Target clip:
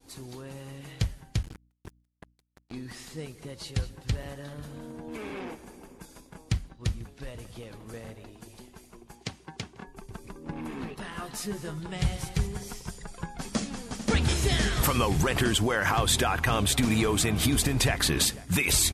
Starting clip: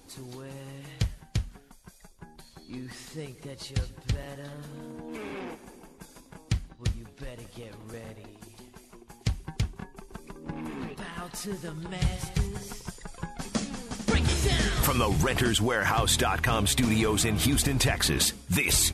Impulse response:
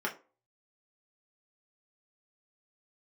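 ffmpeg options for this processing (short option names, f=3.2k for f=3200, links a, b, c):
-filter_complex "[0:a]asettb=1/sr,asplit=3[a][b][c];[a]atrim=end=11.104[d];[b]atrim=start=11.1:end=11.8,asetpts=PTS-STARTPTS,afade=t=in:d=0.004:c=qsin,afade=t=out:st=0.696:d=0.004:c=qsin,asplit=2[e][f];[f]adelay=14,volume=-5.5dB[g];[e][g]amix=inputs=2:normalize=0,atrim=end_sample=30870[h];[c]atrim=start=11.796[i];[d][h]acrossfade=d=0.004:c1=hsin:c2=qsin[j];[j][i]acrossfade=d=0.004:c1=qsin:c2=hsin,asplit=2[k][l];[l]adelay=491,lowpass=f=1.2k:p=1,volume=-18dB,asplit=2[m][n];[n]adelay=491,lowpass=f=1.2k:p=1,volume=0.37,asplit=2[o][p];[p]adelay=491,lowpass=f=1.2k:p=1,volume=0.37[q];[k][m][o][q]amix=inputs=4:normalize=0,asettb=1/sr,asplit=3[r][s][t];[r]atrim=end=1.434[u];[s]atrim=start=1.43:end=2.72,asetpts=PTS-STARTPTS,afade=t=in:d=0.004:c=qsin,afade=t=out:st=1.286:d=0.004:c=qsin,acrusher=bits=5:mix=0:aa=0.5[v];[t]atrim=start=2.716[w];[u][v]acrossfade=d=0.004:c1=hsin:c2=qsin[x];[x][w]acrossfade=d=0.004:c1=qsin:c2=hsin,asettb=1/sr,asplit=3[y][z][aa];[y]atrim=end=9.154[ab];[z]atrim=start=9.15:end=9.87,asetpts=PTS-STARTPTS,afade=t=in:d=0.004:c=qsin,afade=t=out:st=0.716:d=0.004:c=qsin,highpass=230,lowpass=7.8k[ac];[aa]atrim=start=9.866[ad];[ab][ac]acrossfade=d=0.004:c1=hsin:c2=qsin[ae];[ae][ad]acrossfade=d=0.004:c1=qsin:c2=hsin,aeval=exprs='val(0)+0.000794*(sin(2*PI*60*n/s)+sin(2*PI*2*60*n/s)/2+sin(2*PI*3*60*n/s)/3+sin(2*PI*4*60*n/s)/4+sin(2*PI*5*60*n/s)/5)':c=same,agate=range=-33dB:threshold=-51dB:ratio=3:detection=peak"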